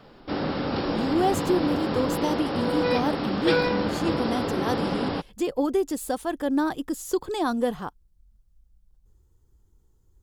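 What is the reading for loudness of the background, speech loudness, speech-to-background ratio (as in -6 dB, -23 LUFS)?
-27.0 LUFS, -28.0 LUFS, -1.0 dB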